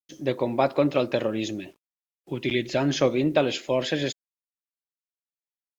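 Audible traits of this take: a quantiser's noise floor 10-bit, dither none; Vorbis

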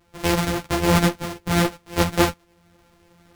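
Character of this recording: a buzz of ramps at a fixed pitch in blocks of 256 samples; tremolo saw up 0.86 Hz, depth 50%; a shimmering, thickened sound

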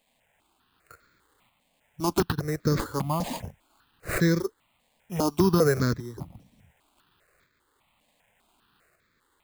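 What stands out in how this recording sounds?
a quantiser's noise floor 12-bit, dither triangular; tremolo saw up 0.67 Hz, depth 45%; aliases and images of a low sample rate 5.7 kHz, jitter 0%; notches that jump at a steady rate 5 Hz 370–2900 Hz

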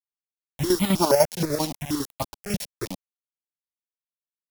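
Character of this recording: a buzz of ramps at a fixed pitch in blocks of 8 samples; chopped level 10 Hz, depth 65%, duty 50%; a quantiser's noise floor 6-bit, dither none; notches that jump at a steady rate 6.3 Hz 320–1600 Hz

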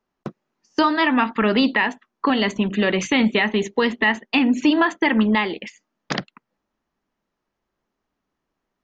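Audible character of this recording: noise floor -80 dBFS; spectral tilt -3.0 dB/octave

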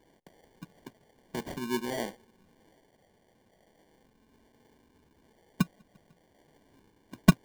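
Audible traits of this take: phasing stages 8, 0.38 Hz, lowest notch 470–1300 Hz; aliases and images of a low sample rate 1.3 kHz, jitter 0%

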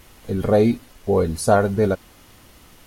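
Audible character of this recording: noise floor -50 dBFS; spectral tilt -5.5 dB/octave

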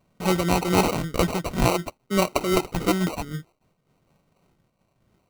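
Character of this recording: a quantiser's noise floor 12-bit, dither none; phasing stages 12, 0.57 Hz, lowest notch 640–2500 Hz; aliases and images of a low sample rate 1.7 kHz, jitter 0%; random flutter of the level

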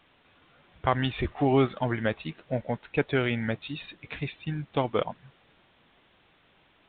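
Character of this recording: a quantiser's noise floor 10-bit, dither triangular; µ-law

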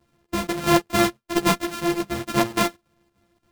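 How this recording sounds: a buzz of ramps at a fixed pitch in blocks of 128 samples; chopped level 3.5 Hz, depth 60%, duty 80%; a shimmering, thickened sound

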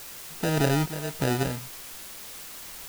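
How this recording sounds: aliases and images of a low sample rate 1.1 kHz, jitter 0%; random-step tremolo 3.5 Hz, depth 75%; a quantiser's noise floor 8-bit, dither triangular

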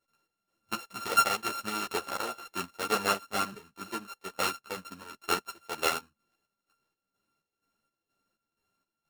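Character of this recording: a buzz of ramps at a fixed pitch in blocks of 32 samples; chopped level 2.1 Hz, depth 60%, duty 55%; a shimmering, thickened sound

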